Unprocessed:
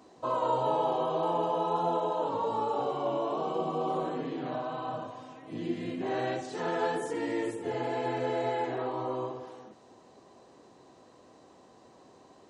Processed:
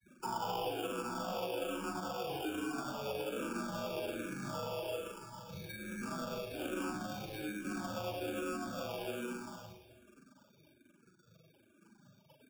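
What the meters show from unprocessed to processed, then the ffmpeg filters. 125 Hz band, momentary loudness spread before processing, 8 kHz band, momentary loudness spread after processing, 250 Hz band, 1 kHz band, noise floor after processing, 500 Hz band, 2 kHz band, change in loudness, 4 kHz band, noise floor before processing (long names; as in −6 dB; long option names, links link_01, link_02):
−5.5 dB, 8 LU, +5.0 dB, 7 LU, −5.0 dB, −11.0 dB, −67 dBFS, −9.5 dB, −2.0 dB, −8.0 dB, +0.5 dB, −57 dBFS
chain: -filter_complex "[0:a]asplit=2[link_01][link_02];[link_02]acompressor=threshold=-41dB:ratio=6,volume=1.5dB[link_03];[link_01][link_03]amix=inputs=2:normalize=0,adynamicequalizer=threshold=0.00631:dfrequency=1000:dqfactor=2.4:tfrequency=1000:tqfactor=2.4:attack=5:release=100:ratio=0.375:range=3.5:mode=cutabove:tftype=bell,asplit=2[link_04][link_05];[link_05]adelay=43,volume=-7dB[link_06];[link_04][link_06]amix=inputs=2:normalize=0,afftfilt=real='re*gte(hypot(re,im),0.02)':imag='im*gte(hypot(re,im),0.02)':win_size=1024:overlap=0.75,lowpass=frequency=6000:width_type=q:width=2.2,aemphasis=mode=production:type=bsi,acrusher=samples=21:mix=1:aa=0.000001,bandreject=frequency=1200:width=11,aecho=1:1:40|100|190|325|527.5:0.631|0.398|0.251|0.158|0.1,afreqshift=-140,acrossover=split=100|290|2800[link_07][link_08][link_09][link_10];[link_07]acompressor=threshold=-54dB:ratio=4[link_11];[link_08]acompressor=threshold=-37dB:ratio=4[link_12];[link_09]acompressor=threshold=-28dB:ratio=4[link_13];[link_10]acompressor=threshold=-41dB:ratio=4[link_14];[link_11][link_12][link_13][link_14]amix=inputs=4:normalize=0,asplit=2[link_15][link_16];[link_16]afreqshift=-1.2[link_17];[link_15][link_17]amix=inputs=2:normalize=1,volume=-5dB"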